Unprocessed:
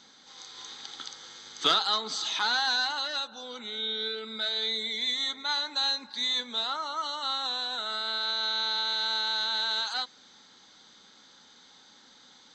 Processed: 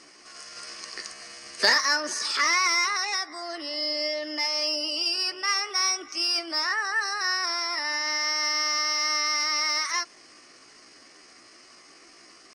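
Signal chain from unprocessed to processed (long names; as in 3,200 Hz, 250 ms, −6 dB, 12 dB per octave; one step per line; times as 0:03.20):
high-shelf EQ 5,000 Hz −11.5 dB
pitch shifter +5.5 semitones
in parallel at −10 dB: soft clipping −28.5 dBFS, distortion −12 dB
on the sum: level +5 dB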